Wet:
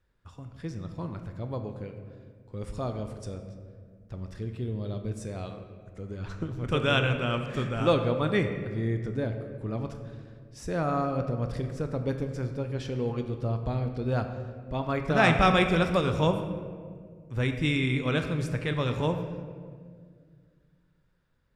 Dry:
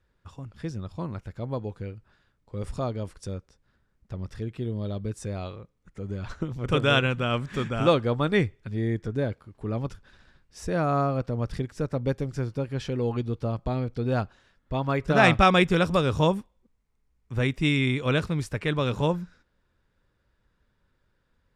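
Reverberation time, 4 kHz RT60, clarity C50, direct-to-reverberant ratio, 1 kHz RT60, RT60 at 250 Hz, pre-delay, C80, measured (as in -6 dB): 1.9 s, 1.1 s, 7.5 dB, 6.0 dB, 1.7 s, 2.7 s, 17 ms, 9.0 dB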